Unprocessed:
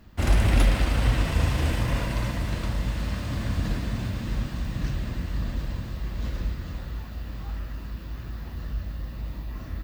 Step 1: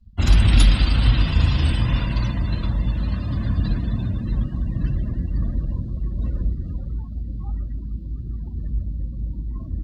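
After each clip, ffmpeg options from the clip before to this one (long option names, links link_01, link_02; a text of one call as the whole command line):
ffmpeg -i in.wav -filter_complex "[0:a]afftdn=noise_reduction=33:noise_floor=-38,equalizer=frequency=500:width_type=o:width=1:gain=-3,equalizer=frequency=2000:width_type=o:width=1:gain=-7,equalizer=frequency=4000:width_type=o:width=1:gain=9,equalizer=frequency=8000:width_type=o:width=1:gain=6,acrossover=split=320|1000[link_01][link_02][link_03];[link_02]acompressor=threshold=-49dB:ratio=6[link_04];[link_01][link_04][link_03]amix=inputs=3:normalize=0,volume=6dB" out.wav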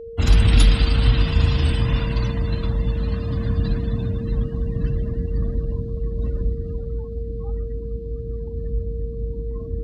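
ffmpeg -i in.wav -af "aeval=exprs='val(0)+0.0224*sin(2*PI*460*n/s)':channel_layout=same" out.wav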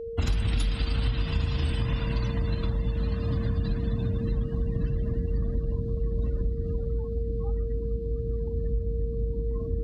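ffmpeg -i in.wav -af "acompressor=threshold=-23dB:ratio=6" out.wav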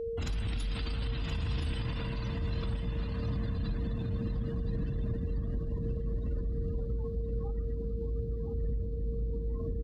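ffmpeg -i in.wav -filter_complex "[0:a]alimiter=level_in=3dB:limit=-24dB:level=0:latency=1:release=25,volume=-3dB,asplit=2[link_01][link_02];[link_02]aecho=0:1:1023:0.355[link_03];[link_01][link_03]amix=inputs=2:normalize=0" out.wav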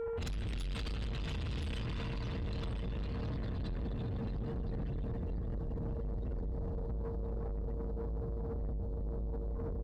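ffmpeg -i in.wav -af "asoftclip=type=tanh:threshold=-36.5dB,volume=2dB" out.wav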